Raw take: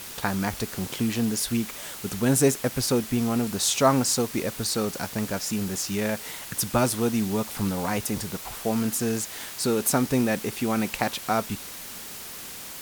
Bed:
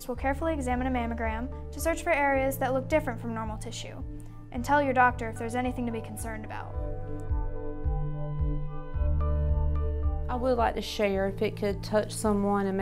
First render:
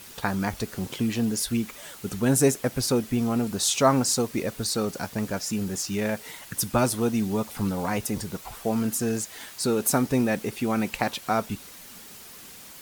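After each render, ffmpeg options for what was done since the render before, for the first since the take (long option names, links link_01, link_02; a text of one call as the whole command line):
ffmpeg -i in.wav -af "afftdn=noise_reduction=7:noise_floor=-39" out.wav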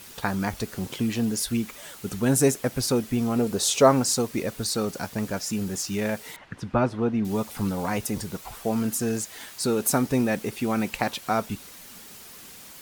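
ffmpeg -i in.wav -filter_complex "[0:a]asettb=1/sr,asplit=3[link_01][link_02][link_03];[link_01]atrim=end=3.384[link_04];[link_02]atrim=start=3.38:end=3.92,asetpts=PTS-STARTPTS,afade=type=in:duration=0.004:curve=qsin,afade=type=out:start_time=0.536:duration=0.004:curve=qsin,equalizer=frequency=460:width_type=o:width=0.77:gain=8.5[link_05];[link_03]atrim=start=3.916[link_06];[link_04][link_05]acrossfade=duration=0.004:curve1=hsin:curve2=qsin[link_07];[link_07][link_06]acrossfade=duration=0.004:curve1=qsin:curve2=hsin,asettb=1/sr,asplit=3[link_08][link_09][link_10];[link_08]atrim=end=6.364[link_11];[link_09]atrim=start=6.36:end=7.25,asetpts=PTS-STARTPTS,afade=type=in:duration=0.004:curve=qsin,afade=type=out:start_time=0.886:duration=0.004:curve=qsin,lowpass=2100[link_12];[link_10]atrim=start=7.246[link_13];[link_11][link_12]acrossfade=duration=0.004:curve1=hsin:curve2=qsin[link_14];[link_14][link_13]acrossfade=duration=0.004:curve1=qsin:curve2=hsin,asettb=1/sr,asplit=3[link_15][link_16][link_17];[link_15]atrim=end=10.334[link_18];[link_16]atrim=start=10.33:end=10.91,asetpts=PTS-STARTPTS,afade=type=in:duration=0.004:curve=qsin,afade=type=out:start_time=0.576:duration=0.004:curve=qsin,acrusher=bits=7:mode=log:mix=0:aa=0.000001[link_19];[link_17]atrim=start=10.906[link_20];[link_18][link_19]acrossfade=duration=0.004:curve1=hsin:curve2=qsin[link_21];[link_21][link_20]acrossfade=duration=0.004:curve1=qsin:curve2=hsin" out.wav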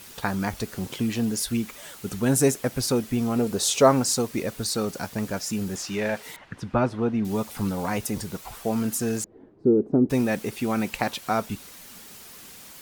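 ffmpeg -i in.wav -filter_complex "[0:a]asettb=1/sr,asplit=3[link_01][link_02][link_03];[link_01]atrim=end=5.764[link_04];[link_02]atrim=start=5.76:end=6.23,asetpts=PTS-STARTPTS,afade=type=in:duration=0.004:curve=qsin,afade=type=out:start_time=0.466:duration=0.004:curve=qsin,asplit=2[link_05][link_06];[link_06]highpass=frequency=720:poles=1,volume=12dB,asoftclip=type=tanh:threshold=-14.5dB[link_07];[link_05][link_07]amix=inputs=2:normalize=0,lowpass=frequency=2200:poles=1,volume=-6dB[link_08];[link_03]atrim=start=6.226[link_09];[link_04][link_08]acrossfade=duration=0.004:curve1=hsin:curve2=qsin[link_10];[link_10][link_09]acrossfade=duration=0.004:curve1=qsin:curve2=hsin,asettb=1/sr,asplit=3[link_11][link_12][link_13];[link_11]atrim=end=9.244[link_14];[link_12]atrim=start=9.24:end=10.1,asetpts=PTS-STARTPTS,afade=type=in:duration=0.004:curve=qsin,afade=type=out:start_time=0.856:duration=0.004:curve=qsin,lowpass=frequency=360:width_type=q:width=3[link_15];[link_13]atrim=start=10.096[link_16];[link_14][link_15]acrossfade=duration=0.004:curve1=hsin:curve2=qsin[link_17];[link_17][link_16]acrossfade=duration=0.004:curve1=qsin:curve2=hsin" out.wav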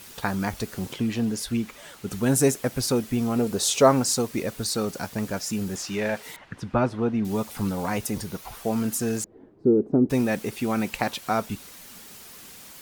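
ffmpeg -i in.wav -filter_complex "[0:a]asettb=1/sr,asplit=3[link_01][link_02][link_03];[link_01]atrim=end=0.934[link_04];[link_02]atrim=start=0.93:end=2.11,asetpts=PTS-STARTPTS,afade=type=in:duration=0.004:curve=qsin,afade=type=out:start_time=1.176:duration=0.004:curve=qsin,highshelf=frequency=6200:gain=-8[link_05];[link_03]atrim=start=2.106[link_06];[link_04][link_05]acrossfade=duration=0.004:curve1=hsin:curve2=qsin[link_07];[link_07][link_06]acrossfade=duration=0.004:curve1=qsin:curve2=hsin,asettb=1/sr,asplit=3[link_08][link_09][link_10];[link_08]atrim=end=8.184[link_11];[link_09]atrim=start=8.18:end=8.59,asetpts=PTS-STARTPTS,afade=type=in:duration=0.004:curve=qsin,afade=type=out:start_time=0.406:duration=0.004:curve=qsin,bandreject=frequency=7700:width=7.5[link_12];[link_10]atrim=start=8.586[link_13];[link_11][link_12]acrossfade=duration=0.004:curve1=hsin:curve2=qsin[link_14];[link_14][link_13]acrossfade=duration=0.004:curve1=qsin:curve2=hsin" out.wav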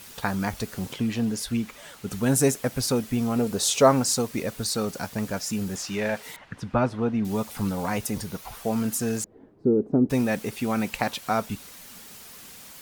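ffmpeg -i in.wav -af "equalizer=frequency=350:width_type=o:width=0.3:gain=-4.5" out.wav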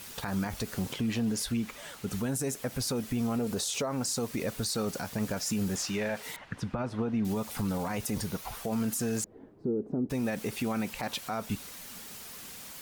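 ffmpeg -i in.wav -af "acompressor=threshold=-24dB:ratio=6,alimiter=limit=-23dB:level=0:latency=1:release=34" out.wav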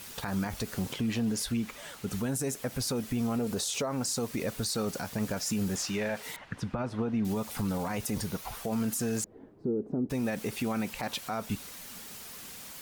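ffmpeg -i in.wav -af anull out.wav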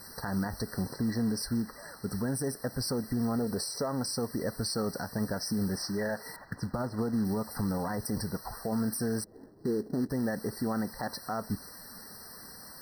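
ffmpeg -i in.wav -af "acrusher=bits=4:mode=log:mix=0:aa=0.000001,afftfilt=real='re*eq(mod(floor(b*sr/1024/2000),2),0)':imag='im*eq(mod(floor(b*sr/1024/2000),2),0)':win_size=1024:overlap=0.75" out.wav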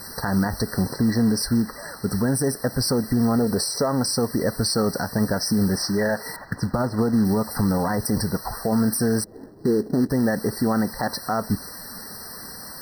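ffmpeg -i in.wav -af "volume=10dB" out.wav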